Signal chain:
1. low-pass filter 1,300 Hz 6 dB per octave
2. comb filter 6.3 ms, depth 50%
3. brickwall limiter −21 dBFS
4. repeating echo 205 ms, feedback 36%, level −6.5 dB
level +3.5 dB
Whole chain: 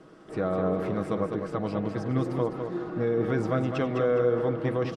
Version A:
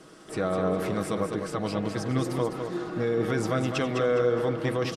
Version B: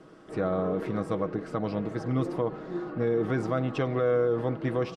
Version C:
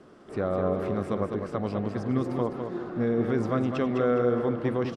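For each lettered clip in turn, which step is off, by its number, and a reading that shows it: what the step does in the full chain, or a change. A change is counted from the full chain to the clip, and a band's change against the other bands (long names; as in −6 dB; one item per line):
1, 4 kHz band +9.0 dB
4, change in crest factor −2.5 dB
2, 250 Hz band +2.5 dB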